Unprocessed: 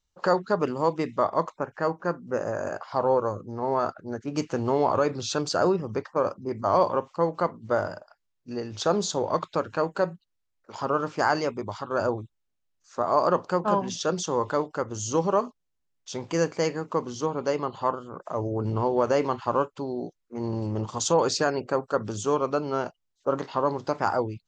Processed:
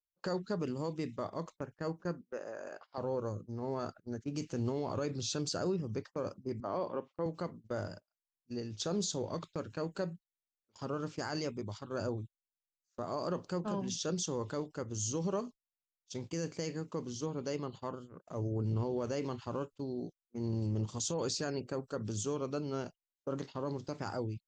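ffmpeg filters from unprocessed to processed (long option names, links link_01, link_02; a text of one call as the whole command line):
ffmpeg -i in.wav -filter_complex "[0:a]asettb=1/sr,asplit=3[link_01][link_02][link_03];[link_01]atrim=end=2.214[link_04];[link_02]atrim=start=2.21:end=2.98,asetpts=PTS-STARTPTS,afade=type=in:duration=0.004:curve=qsin,afade=type=out:start_time=0.766:duration=0.004:curve=qsin,highpass=470,lowpass=4100[link_05];[link_03]atrim=start=2.976[link_06];[link_04][link_05]acrossfade=duration=0.004:curve1=hsin:curve2=qsin[link_07];[link_07][link_06]acrossfade=duration=0.004:curve1=qsin:curve2=hsin,asettb=1/sr,asplit=3[link_08][link_09][link_10];[link_08]atrim=end=6.604[link_11];[link_09]atrim=start=6.6:end=7.26,asetpts=PTS-STARTPTS,afade=type=in:duration=0.004:curve=qsin,afade=type=out:start_time=0.656:duration=0.004:curve=qsin,highpass=220,lowpass=2700[link_12];[link_10]atrim=start=7.256[link_13];[link_11][link_12]acrossfade=duration=0.004:curve1=hsin:curve2=qsin[link_14];[link_14][link_13]acrossfade=duration=0.004:curve1=qsin:curve2=hsin,agate=range=-25dB:threshold=-37dB:ratio=16:detection=peak,equalizer=frequency=970:width_type=o:width=2.4:gain=-14.5,alimiter=limit=-24dB:level=0:latency=1:release=27,volume=-2dB" out.wav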